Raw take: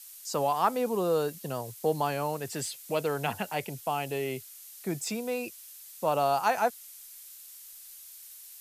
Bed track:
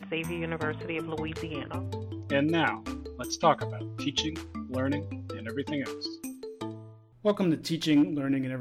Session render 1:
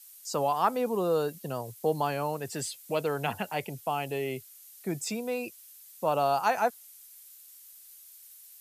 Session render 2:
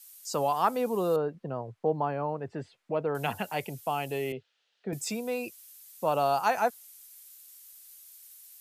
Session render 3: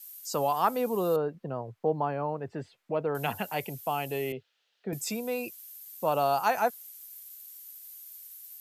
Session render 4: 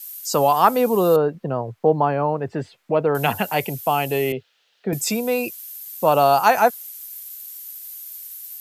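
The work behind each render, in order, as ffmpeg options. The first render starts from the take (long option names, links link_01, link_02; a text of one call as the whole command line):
ffmpeg -i in.wav -af "afftdn=noise_reduction=6:noise_floor=-49" out.wav
ffmpeg -i in.wav -filter_complex "[0:a]asettb=1/sr,asplit=3[link_01][link_02][link_03];[link_01]atrim=end=1.164[link_04];[link_02]atrim=start=1.16:end=3.15,asetpts=PTS-STARTPTS,afade=type=in:duration=0.004:curve=qsin,afade=type=out:start_time=1.986:duration=0.004:curve=qsin,lowpass=1400[link_05];[link_03]atrim=start=3.146[link_06];[link_04][link_05]acrossfade=duration=0.004:curve1=hsin:curve2=qsin[link_07];[link_07][link_06]acrossfade=duration=0.004:curve1=qsin:curve2=hsin,asettb=1/sr,asplit=3[link_08][link_09][link_10];[link_08]atrim=end=4.324[link_11];[link_09]atrim=start=4.32:end=4.93,asetpts=PTS-STARTPTS,afade=type=in:duration=0.004:curve=qsin,afade=type=out:start_time=0.606:duration=0.004:curve=qsin,highpass=140,equalizer=frequency=330:width_type=q:width=4:gain=-9,equalizer=frequency=470:width_type=q:width=4:gain=8,equalizer=frequency=1100:width_type=q:width=4:gain=-8,equalizer=frequency=2200:width_type=q:width=4:gain=-9,lowpass=frequency=3200:width=0.5412,lowpass=frequency=3200:width=1.3066[link_12];[link_10]atrim=start=4.926[link_13];[link_11][link_12]acrossfade=duration=0.004:curve1=hsin:curve2=qsin[link_14];[link_14][link_13]acrossfade=duration=0.004:curve1=qsin:curve2=hsin" out.wav
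ffmpeg -i in.wav -af "equalizer=frequency=13000:width=5.6:gain=11" out.wav
ffmpeg -i in.wav -af "volume=10.5dB" out.wav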